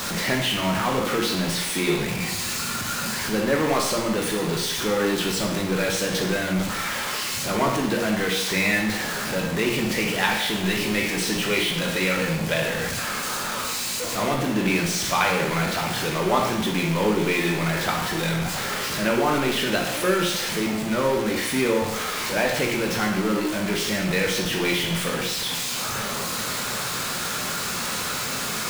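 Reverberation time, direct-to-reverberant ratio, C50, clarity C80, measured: 0.85 s, -0.5 dB, 3.5 dB, 7.0 dB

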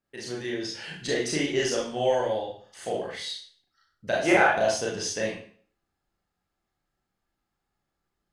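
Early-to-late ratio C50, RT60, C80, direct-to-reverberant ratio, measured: 4.0 dB, 0.50 s, 8.5 dB, -4.0 dB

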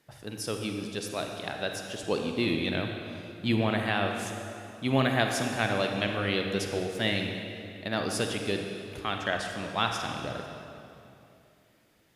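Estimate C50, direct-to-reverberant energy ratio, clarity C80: 3.5 dB, 3.0 dB, 4.5 dB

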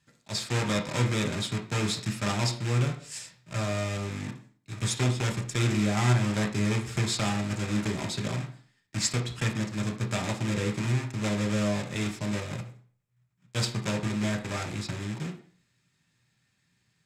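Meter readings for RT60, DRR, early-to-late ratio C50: 0.50 s, 3.0 dB, 11.0 dB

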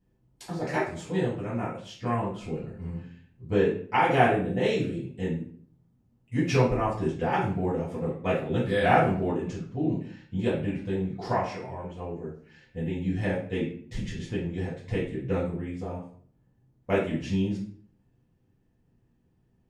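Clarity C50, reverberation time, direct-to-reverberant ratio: 5.0 dB, 0.50 s, -8.5 dB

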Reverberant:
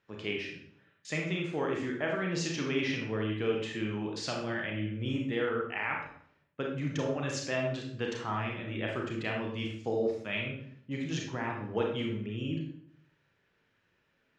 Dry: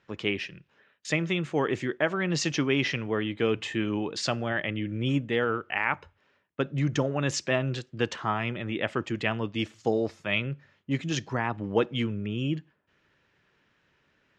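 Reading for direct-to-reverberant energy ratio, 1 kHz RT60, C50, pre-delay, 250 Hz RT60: -0.5 dB, 0.60 s, 3.5 dB, 29 ms, 0.80 s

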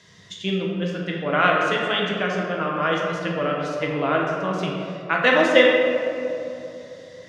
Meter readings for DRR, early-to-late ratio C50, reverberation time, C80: -2.5 dB, 0.5 dB, 3.0 s, 2.0 dB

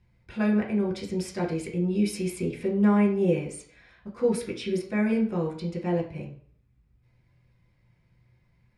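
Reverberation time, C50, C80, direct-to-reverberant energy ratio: 0.50 s, 9.0 dB, 13.5 dB, -0.5 dB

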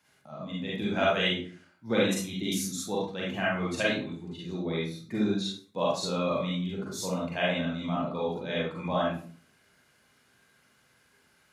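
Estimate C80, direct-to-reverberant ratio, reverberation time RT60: 6.5 dB, -5.5 dB, 0.45 s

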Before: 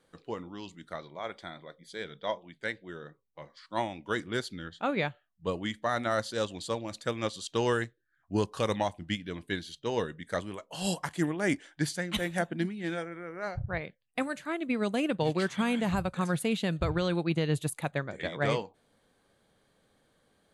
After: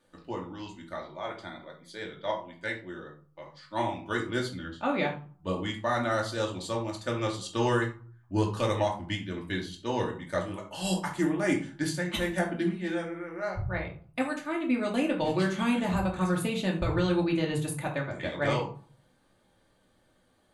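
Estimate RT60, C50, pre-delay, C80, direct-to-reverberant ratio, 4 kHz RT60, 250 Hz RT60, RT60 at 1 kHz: 0.45 s, 8.5 dB, 3 ms, 14.0 dB, -1.5 dB, 0.25 s, 0.55 s, 0.50 s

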